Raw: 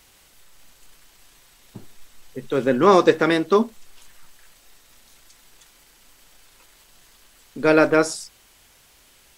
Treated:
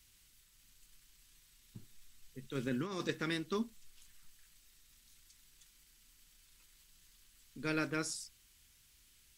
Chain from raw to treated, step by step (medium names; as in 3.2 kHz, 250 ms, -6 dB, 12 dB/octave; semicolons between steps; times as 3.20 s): amplifier tone stack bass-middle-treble 6-0-2; 2.55–3.09 s: compressor with a negative ratio -40 dBFS, ratio -0.5; trim +4 dB